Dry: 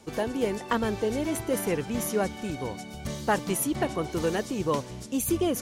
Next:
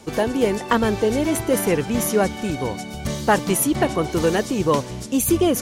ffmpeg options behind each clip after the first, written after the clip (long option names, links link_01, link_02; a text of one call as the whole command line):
ffmpeg -i in.wav -af "acontrast=68,volume=1.5dB" out.wav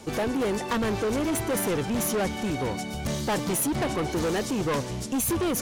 ffmpeg -i in.wav -af "asoftclip=type=tanh:threshold=-23dB" out.wav